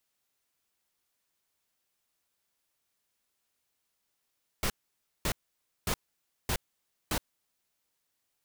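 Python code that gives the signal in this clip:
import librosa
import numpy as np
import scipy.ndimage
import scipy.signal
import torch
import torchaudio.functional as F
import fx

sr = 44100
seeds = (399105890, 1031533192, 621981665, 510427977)

y = fx.noise_burst(sr, seeds[0], colour='pink', on_s=0.07, off_s=0.55, bursts=5, level_db=-29.5)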